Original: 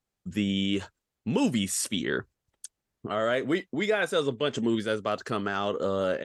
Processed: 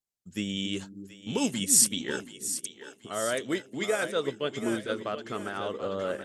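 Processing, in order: tone controls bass -2 dB, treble +11 dB, from 3.86 s treble -3 dB; two-band feedback delay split 370 Hz, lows 276 ms, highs 730 ms, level -8 dB; upward expansion 1.5:1, over -46 dBFS

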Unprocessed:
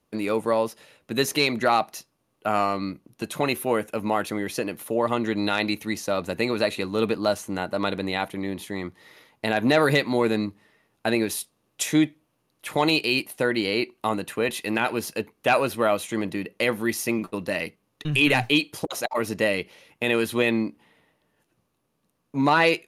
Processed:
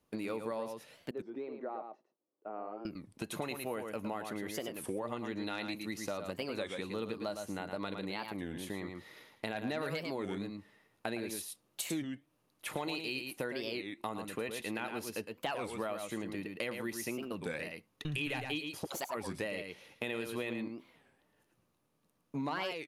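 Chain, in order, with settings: 1.13–2.87 s: ladder band-pass 460 Hz, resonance 30%; delay 111 ms -7.5 dB; compression 4:1, threshold -32 dBFS, peak gain reduction 15 dB; warped record 33 1/3 rpm, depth 250 cents; trim -4.5 dB

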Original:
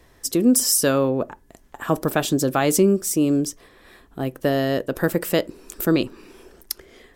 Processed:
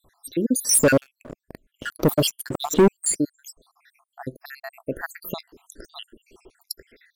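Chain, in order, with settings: random holes in the spectrogram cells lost 78%; 0.69–3.15 s: waveshaping leveller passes 3; trim -2 dB

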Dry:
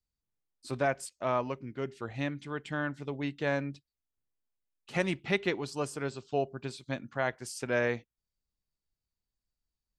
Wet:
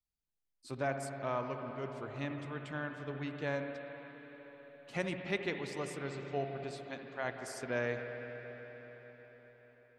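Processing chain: 6.75–7.25 s: bass shelf 250 Hz -11.5 dB; reverberation RT60 5.1 s, pre-delay 65 ms, DRR 4 dB; trim -6.5 dB

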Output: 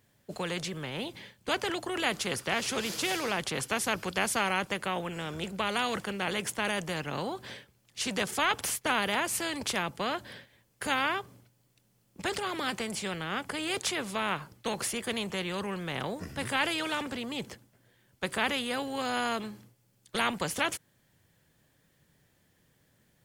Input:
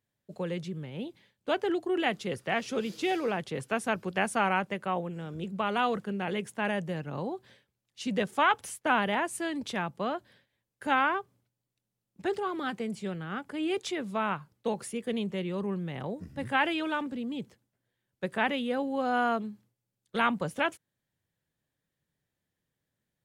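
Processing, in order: band-stop 3.8 kHz, Q 23; spectrum-flattening compressor 2:1

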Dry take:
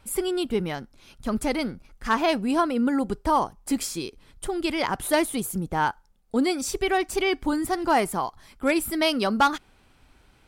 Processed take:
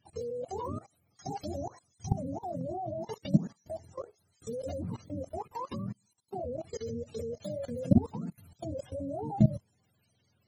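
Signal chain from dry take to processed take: spectrum inverted on a logarithmic axis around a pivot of 420 Hz; level held to a coarse grid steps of 18 dB

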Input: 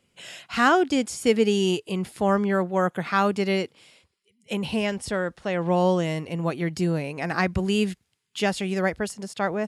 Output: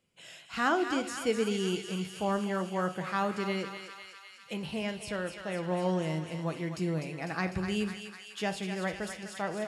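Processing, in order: on a send: thinning echo 250 ms, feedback 78%, high-pass 1.1 kHz, level -6 dB; on the sum: simulated room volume 560 m³, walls furnished, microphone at 0.65 m; trim -9 dB

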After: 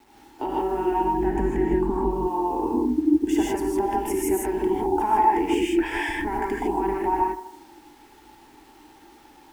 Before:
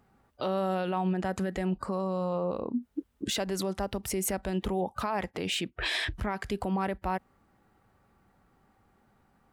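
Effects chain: octave divider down 2 oct, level 0 dB; feedback echo behind a band-pass 78 ms, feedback 46%, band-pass 810 Hz, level -14 dB; compression 4:1, threshold -32 dBFS, peak gain reduction 9 dB; bass shelf 340 Hz -5 dB; static phaser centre 820 Hz, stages 8; small resonant body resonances 320/870 Hz, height 17 dB, ringing for 25 ms; bit crusher 10-bit; 1.14–2.11 s: tone controls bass +10 dB, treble -6 dB; gated-style reverb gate 180 ms rising, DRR -4 dB; trim +2 dB

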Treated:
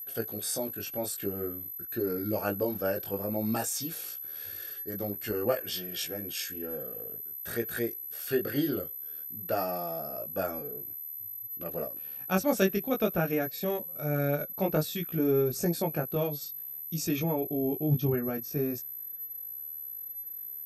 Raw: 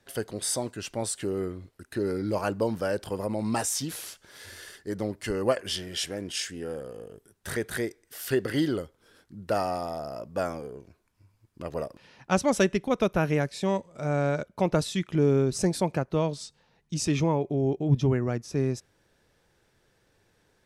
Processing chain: comb of notches 1 kHz; whistle 12 kHz -34 dBFS; chorus 0.52 Hz, delay 17 ms, depth 3.9 ms

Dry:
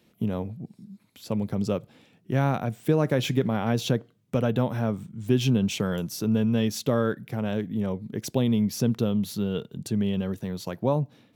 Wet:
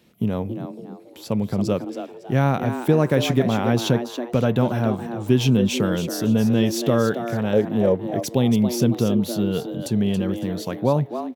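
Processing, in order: 7.53–7.95 s: peaking EQ 510 Hz +13 dB 0.73 oct; frequency-shifting echo 278 ms, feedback 32%, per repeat +120 Hz, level -9.5 dB; trim +4.5 dB

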